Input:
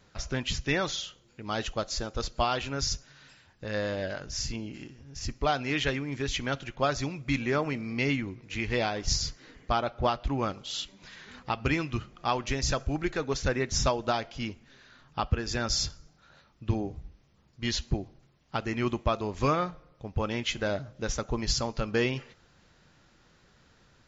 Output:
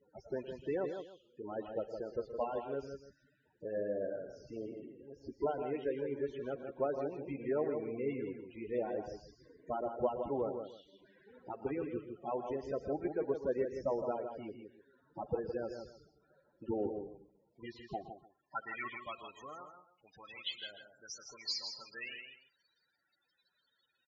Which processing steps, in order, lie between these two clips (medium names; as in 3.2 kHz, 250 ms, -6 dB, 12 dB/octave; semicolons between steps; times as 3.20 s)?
spectral contrast reduction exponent 0.25; band-stop 1.2 kHz, Q 20; in parallel at 0 dB: compression, threshold -40 dBFS, peak gain reduction 18.5 dB; on the sum: loudest bins only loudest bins 8; on a send: multi-tap echo 117/161/299 ms -14/-7/-19 dB; on the sum: band-pass sweep 460 Hz -> 4 kHz, 17.32–19.74 s; trim +7 dB